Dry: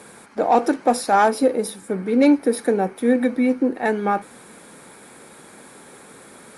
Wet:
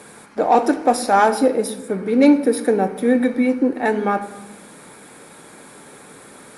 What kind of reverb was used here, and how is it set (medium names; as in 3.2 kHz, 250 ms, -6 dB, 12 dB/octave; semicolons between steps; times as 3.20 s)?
simulated room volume 450 m³, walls mixed, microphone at 0.4 m; trim +1.5 dB